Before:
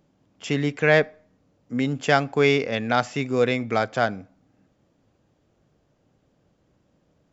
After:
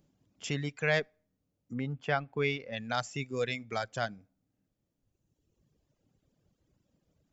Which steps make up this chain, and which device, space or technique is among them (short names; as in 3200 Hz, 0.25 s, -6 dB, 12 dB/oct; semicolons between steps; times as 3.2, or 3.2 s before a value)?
reverb removal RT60 1.8 s; 1.73–2.75 LPF 1700 Hz -> 3400 Hz 12 dB/oct; smiley-face EQ (low shelf 100 Hz +5 dB; bell 1000 Hz -5 dB 2.4 oct; high shelf 6100 Hz +7 dB); dynamic EQ 290 Hz, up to -6 dB, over -37 dBFS, Q 0.88; gain -5.5 dB